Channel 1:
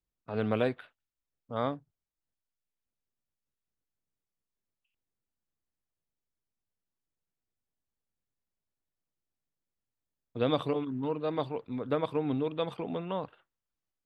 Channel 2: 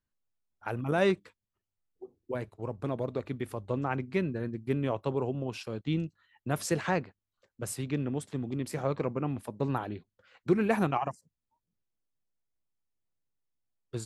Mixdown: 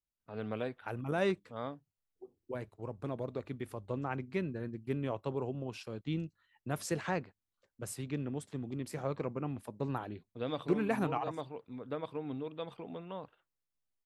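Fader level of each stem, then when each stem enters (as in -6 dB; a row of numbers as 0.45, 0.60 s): -9.0, -5.5 dB; 0.00, 0.20 s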